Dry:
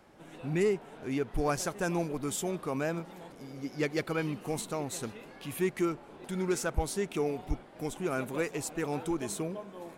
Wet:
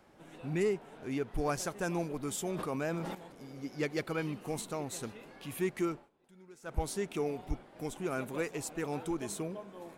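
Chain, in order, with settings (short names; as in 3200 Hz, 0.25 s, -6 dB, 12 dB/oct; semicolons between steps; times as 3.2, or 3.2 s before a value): 2.47–3.15 sustainer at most 26 dB/s; 5.95–6.77 dip -21.5 dB, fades 0.15 s; gain -3 dB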